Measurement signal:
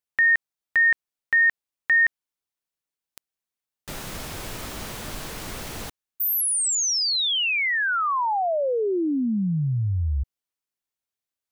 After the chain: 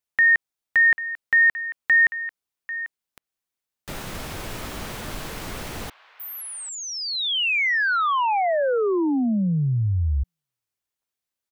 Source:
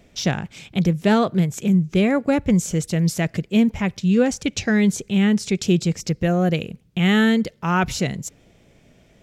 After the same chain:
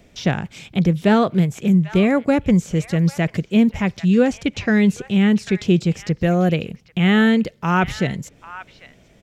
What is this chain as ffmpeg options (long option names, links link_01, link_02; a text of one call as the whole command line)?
ffmpeg -i in.wav -filter_complex "[0:a]acrossover=split=740|3500[link_01][link_02][link_03];[link_02]aecho=1:1:793:0.224[link_04];[link_03]acompressor=threshold=-37dB:ratio=6:attack=0.2:release=204:detection=peak[link_05];[link_01][link_04][link_05]amix=inputs=3:normalize=0,volume=2dB" out.wav